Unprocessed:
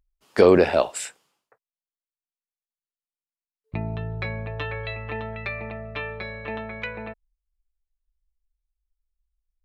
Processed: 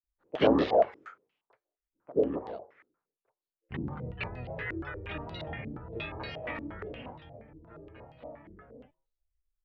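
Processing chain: vibrato 0.53 Hz 5.5 cents; flange 0.26 Hz, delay 7.7 ms, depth 1.7 ms, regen +90%; rotary speaker horn 6.3 Hz, later 0.8 Hz, at 4.71; grains 0.251 s, grains 26/s, spray 30 ms, pitch spread up and down by 7 st; outdoor echo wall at 300 m, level -8 dB; stepped low-pass 8.5 Hz 310–4200 Hz; gain +3 dB

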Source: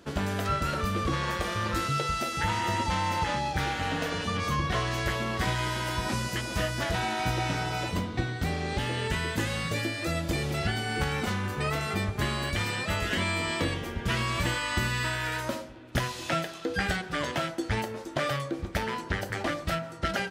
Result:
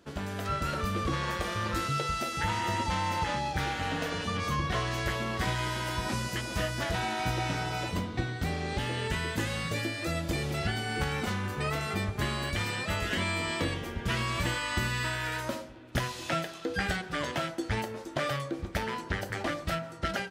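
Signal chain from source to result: AGC gain up to 4.5 dB; gain -6.5 dB

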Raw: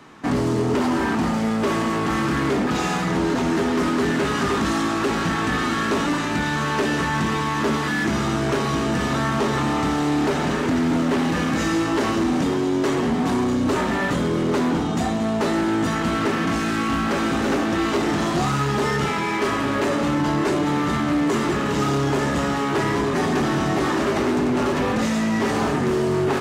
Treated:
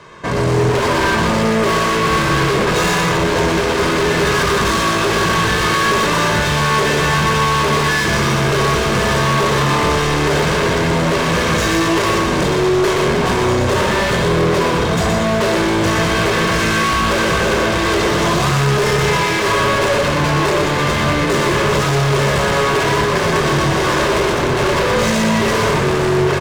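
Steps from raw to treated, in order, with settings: Bessel low-pass 8600 Hz; comb 1.9 ms, depth 87%; AGC gain up to 8.5 dB; hard clip -19.5 dBFS, distortion -6 dB; echo 0.122 s -5 dB; gain +4.5 dB

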